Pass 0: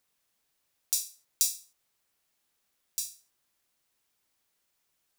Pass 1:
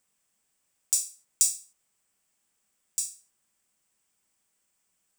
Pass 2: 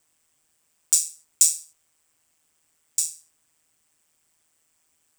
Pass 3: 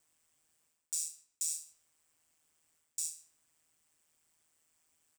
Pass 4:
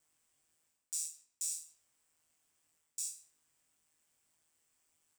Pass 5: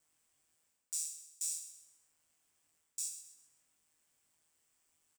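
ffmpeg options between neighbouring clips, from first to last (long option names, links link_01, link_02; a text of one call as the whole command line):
ffmpeg -i in.wav -af "equalizer=frequency=200:width_type=o:width=0.33:gain=7,equalizer=frequency=4000:width_type=o:width=0.33:gain=-6,equalizer=frequency=8000:width_type=o:width=0.33:gain=11,equalizer=frequency=12500:width_type=o:width=0.33:gain=-6" out.wav
ffmpeg -i in.wav -af "acontrast=79,aeval=exprs='val(0)*sin(2*PI*79*n/s)':channel_layout=same,volume=2.5dB" out.wav
ffmpeg -i in.wav -filter_complex "[0:a]areverse,acompressor=threshold=-28dB:ratio=5,areverse,asplit=2[link_01][link_02];[link_02]adelay=154,lowpass=frequency=2200:poles=1,volume=-15dB,asplit=2[link_03][link_04];[link_04]adelay=154,lowpass=frequency=2200:poles=1,volume=0.29,asplit=2[link_05][link_06];[link_06]adelay=154,lowpass=frequency=2200:poles=1,volume=0.29[link_07];[link_01][link_03][link_05][link_07]amix=inputs=4:normalize=0,volume=-6dB" out.wav
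ffmpeg -i in.wav -af "flanger=delay=19.5:depth=2.8:speed=1.8,volume=1dB" out.wav
ffmpeg -i in.wav -af "aecho=1:1:130|260|390|520:0.251|0.0955|0.0363|0.0138" out.wav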